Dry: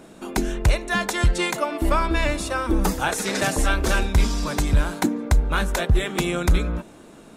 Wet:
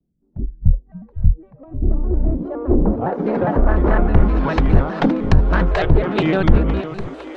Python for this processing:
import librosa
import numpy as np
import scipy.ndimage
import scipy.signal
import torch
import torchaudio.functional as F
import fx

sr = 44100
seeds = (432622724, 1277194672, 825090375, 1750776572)

y = np.minimum(x, 2.0 * 10.0 ** (-18.0 / 20.0) - x)
y = fx.peak_eq(y, sr, hz=1900.0, db=-3.0, octaves=1.6)
y = fx.env_lowpass_down(y, sr, base_hz=1200.0, full_db=-17.5)
y = fx.echo_feedback(y, sr, ms=509, feedback_pct=50, wet_db=-11.5)
y = fx.filter_sweep_lowpass(y, sr, from_hz=120.0, to_hz=3800.0, start_s=1.42, end_s=4.84, q=0.8)
y = fx.noise_reduce_blind(y, sr, reduce_db=23)
y = fx.vibrato_shape(y, sr, shape='square', rate_hz=4.9, depth_cents=160.0)
y = F.gain(torch.from_numpy(y), 8.0).numpy()